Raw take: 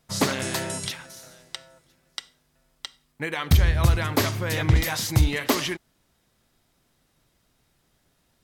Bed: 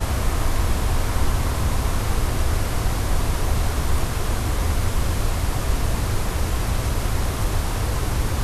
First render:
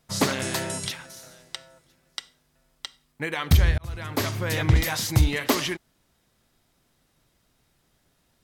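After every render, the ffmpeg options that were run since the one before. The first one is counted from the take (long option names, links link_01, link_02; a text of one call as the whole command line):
ffmpeg -i in.wav -filter_complex "[0:a]asplit=2[link_01][link_02];[link_01]atrim=end=3.78,asetpts=PTS-STARTPTS,afade=type=out:start_time=3.776:duration=0.004:curve=hsin[link_03];[link_02]atrim=start=3.78,asetpts=PTS-STARTPTS,afade=type=in:duration=0.65[link_04];[link_03][link_04]concat=n=2:v=0:a=1" out.wav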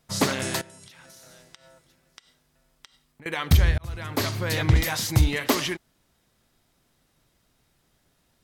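ffmpeg -i in.wav -filter_complex "[0:a]asettb=1/sr,asplit=3[link_01][link_02][link_03];[link_01]atrim=end=0.614[link_04];[link_02]atrim=start=0.61:end=3.26,asetpts=PTS-STARTPTS,afade=type=in:duration=0.004:curve=qsin,afade=type=out:start_time=2.646:duration=0.004:curve=qsin,acompressor=threshold=-45dB:ratio=12:attack=3.2:release=140:knee=1:detection=peak[link_05];[link_03]atrim=start=3.256[link_06];[link_04][link_05]acrossfade=duration=0.004:curve1=hsin:curve2=qsin[link_07];[link_07][link_06]acrossfade=duration=0.004:curve1=qsin:curve2=hsin,asettb=1/sr,asplit=3[link_08][link_09][link_10];[link_08]atrim=end=4.214[link_11];[link_09]atrim=start=4.21:end=4.7,asetpts=PTS-STARTPTS,afade=type=in:duration=0.004:curve=qsin,afade=type=out:start_time=0.486:duration=0.004:curve=qsin,equalizer=frequency=4300:width_type=o:width=0.25:gain=7[link_12];[link_10]atrim=start=4.696[link_13];[link_11][link_12]acrossfade=duration=0.004:curve1=hsin:curve2=qsin[link_14];[link_14][link_13]acrossfade=duration=0.004:curve1=qsin:curve2=hsin" out.wav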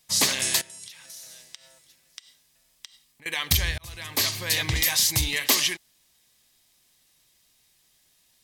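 ffmpeg -i in.wav -af "tiltshelf=frequency=1500:gain=-9.5,bandreject=frequency=1400:width=5.2" out.wav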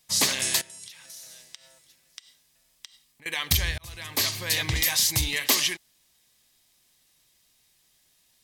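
ffmpeg -i in.wav -af "volume=-1dB" out.wav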